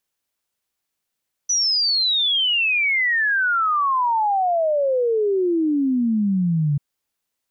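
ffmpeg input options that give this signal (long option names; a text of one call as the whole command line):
ffmpeg -f lavfi -i "aevalsrc='0.15*clip(min(t,5.29-t)/0.01,0,1)*sin(2*PI*6000*5.29/log(140/6000)*(exp(log(140/6000)*t/5.29)-1))':duration=5.29:sample_rate=44100" out.wav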